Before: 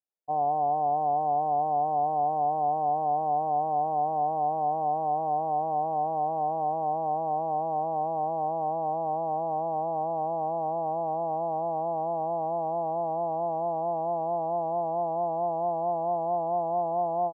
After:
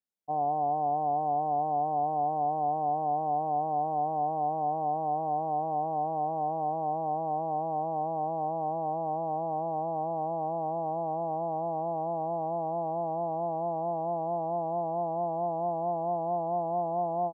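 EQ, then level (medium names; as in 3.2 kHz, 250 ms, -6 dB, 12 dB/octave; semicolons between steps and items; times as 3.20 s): peaking EQ 220 Hz +10 dB 0.79 oct; -3.0 dB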